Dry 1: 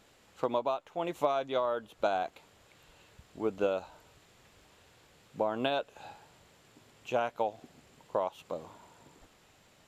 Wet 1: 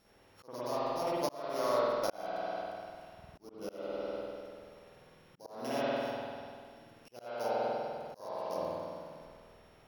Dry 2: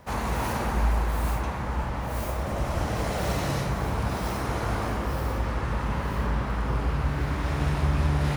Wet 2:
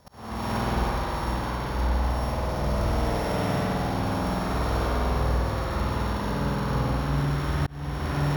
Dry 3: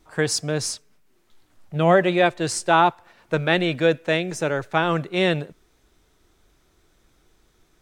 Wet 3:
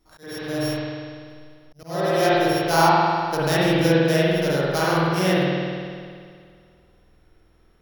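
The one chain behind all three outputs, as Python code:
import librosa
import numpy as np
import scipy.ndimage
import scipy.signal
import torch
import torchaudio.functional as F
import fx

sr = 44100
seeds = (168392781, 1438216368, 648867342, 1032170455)

y = np.r_[np.sort(x[:len(x) // 8 * 8].reshape(-1, 8), axis=1).ravel(), x[len(x) // 8 * 8:]]
y = fx.rev_spring(y, sr, rt60_s=2.1, pass_ms=(49,), chirp_ms=60, drr_db=-9.0)
y = fx.auto_swell(y, sr, attack_ms=482.0)
y = y * librosa.db_to_amplitude(-7.0)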